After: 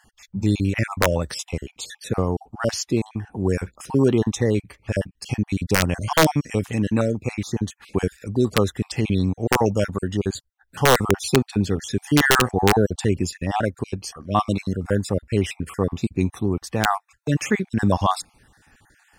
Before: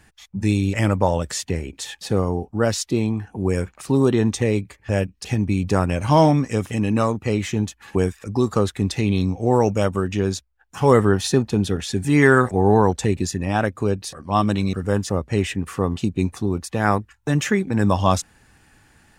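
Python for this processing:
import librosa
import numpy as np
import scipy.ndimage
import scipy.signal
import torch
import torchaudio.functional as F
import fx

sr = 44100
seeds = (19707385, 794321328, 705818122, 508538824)

y = fx.spec_dropout(x, sr, seeds[0], share_pct=37)
y = (np.mod(10.0 ** (6.0 / 20.0) * y + 1.0, 2.0) - 1.0) / 10.0 ** (6.0 / 20.0)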